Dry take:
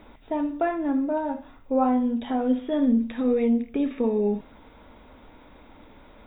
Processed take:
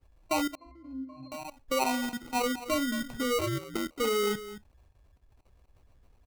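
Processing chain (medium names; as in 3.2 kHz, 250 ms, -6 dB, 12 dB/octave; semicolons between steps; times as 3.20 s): expander on every frequency bin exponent 2; treble shelf 2.9 kHz +5 dB; level held to a coarse grid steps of 17 dB; delay 222 ms -14.5 dB; 3.38–3.95 s: ring modulator 160 Hz -> 33 Hz; sample-and-hold 26×; 0.55–1.32 s: pitch-class resonator C, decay 0.52 s; dynamic bell 210 Hz, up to -7 dB, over -51 dBFS, Q 1.6; 1.84–2.42 s: three bands expanded up and down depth 70%; trim +8.5 dB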